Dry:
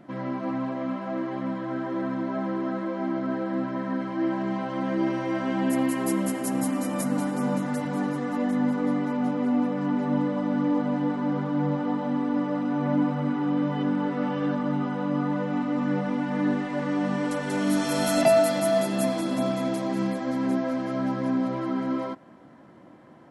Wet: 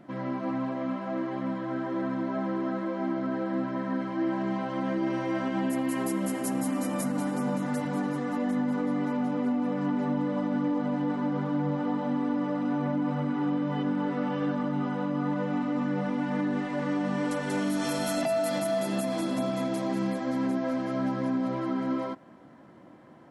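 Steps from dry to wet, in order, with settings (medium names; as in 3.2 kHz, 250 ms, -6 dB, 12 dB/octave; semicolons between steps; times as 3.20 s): peak limiter -19 dBFS, peak gain reduction 10.5 dB; trim -1.5 dB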